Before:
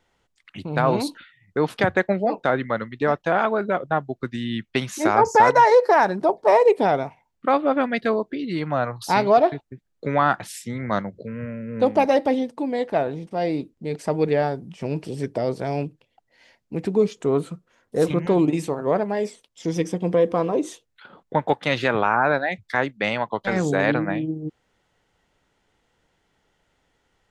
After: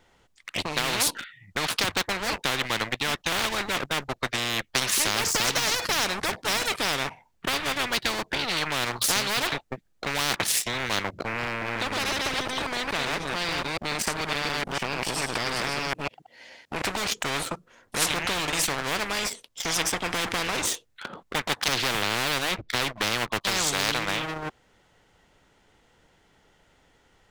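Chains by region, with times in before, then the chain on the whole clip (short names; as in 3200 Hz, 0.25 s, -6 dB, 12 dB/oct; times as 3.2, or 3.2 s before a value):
11.47–16.82 reverse delay 0.144 s, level -2 dB + HPF 130 Hz 6 dB/oct + compressor 2.5:1, threshold -28 dBFS
21.68–23.41 LPF 3200 Hz + resonant low shelf 650 Hz +11.5 dB, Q 1.5
whole clip: sample leveller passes 2; spectral compressor 10:1; gain -7 dB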